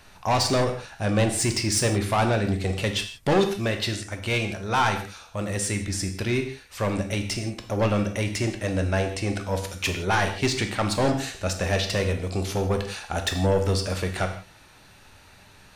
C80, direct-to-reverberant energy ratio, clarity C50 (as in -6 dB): 11.5 dB, 5.0 dB, 8.5 dB